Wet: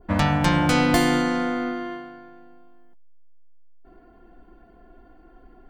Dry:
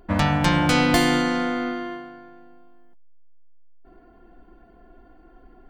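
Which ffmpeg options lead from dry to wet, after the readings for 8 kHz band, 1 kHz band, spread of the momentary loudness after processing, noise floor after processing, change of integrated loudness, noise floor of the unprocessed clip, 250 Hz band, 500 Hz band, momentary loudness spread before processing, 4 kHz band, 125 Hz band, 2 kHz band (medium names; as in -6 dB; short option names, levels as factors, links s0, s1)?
-1.0 dB, -0.5 dB, 13 LU, -52 dBFS, -0.5 dB, -52 dBFS, 0.0 dB, 0.0 dB, 14 LU, -3.0 dB, 0.0 dB, -1.5 dB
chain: -af "adynamicequalizer=threshold=0.0112:dfrequency=3400:dqfactor=0.78:tfrequency=3400:tqfactor=0.78:attack=5:release=100:ratio=0.375:range=2:mode=cutabove:tftype=bell"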